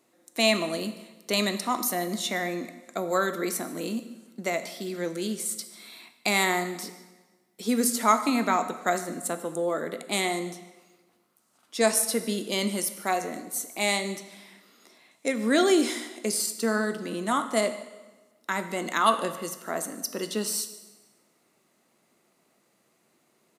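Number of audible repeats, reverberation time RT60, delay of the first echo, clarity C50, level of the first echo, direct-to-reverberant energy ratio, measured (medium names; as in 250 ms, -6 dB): 1, 1.2 s, 148 ms, 11.5 dB, -20.5 dB, 9.5 dB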